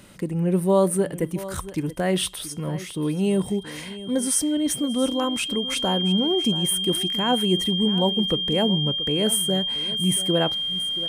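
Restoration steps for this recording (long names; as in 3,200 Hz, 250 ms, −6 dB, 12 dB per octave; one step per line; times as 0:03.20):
notch filter 3,200 Hz, Q 30
echo removal 679 ms −15.5 dB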